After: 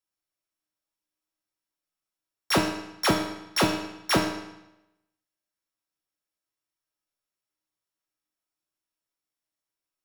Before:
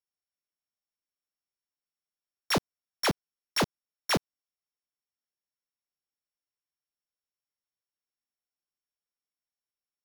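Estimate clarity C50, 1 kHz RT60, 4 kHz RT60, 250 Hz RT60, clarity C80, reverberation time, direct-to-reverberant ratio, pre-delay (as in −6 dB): 4.5 dB, 0.90 s, 0.85 s, 0.90 s, 7.5 dB, 0.90 s, −1.0 dB, 3 ms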